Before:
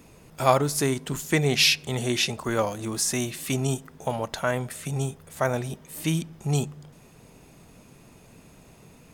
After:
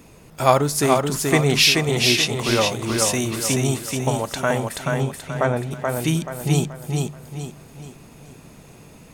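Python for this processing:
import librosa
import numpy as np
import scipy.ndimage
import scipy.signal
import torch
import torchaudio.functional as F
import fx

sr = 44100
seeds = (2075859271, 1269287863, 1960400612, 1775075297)

p1 = fx.lowpass(x, sr, hz=fx.line((4.78, 5000.0), (5.7, 2200.0)), slope=12, at=(4.78, 5.7), fade=0.02)
p2 = p1 + fx.echo_feedback(p1, sr, ms=430, feedback_pct=39, wet_db=-3.5, dry=0)
y = p2 * 10.0 ** (4.0 / 20.0)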